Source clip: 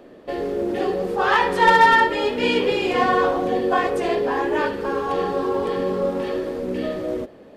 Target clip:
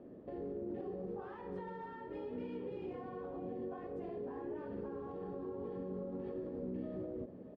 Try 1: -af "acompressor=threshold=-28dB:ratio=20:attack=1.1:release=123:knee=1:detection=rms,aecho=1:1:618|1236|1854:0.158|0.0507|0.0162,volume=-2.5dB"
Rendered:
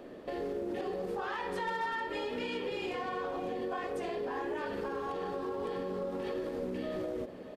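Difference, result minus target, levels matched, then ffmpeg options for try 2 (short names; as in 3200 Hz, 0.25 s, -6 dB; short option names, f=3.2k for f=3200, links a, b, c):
125 Hz band -6.5 dB
-af "acompressor=threshold=-28dB:ratio=20:attack=1.1:release=123:knee=1:detection=rms,bandpass=f=130:t=q:w=0.63:csg=0,aecho=1:1:618|1236|1854:0.158|0.0507|0.0162,volume=-2.5dB"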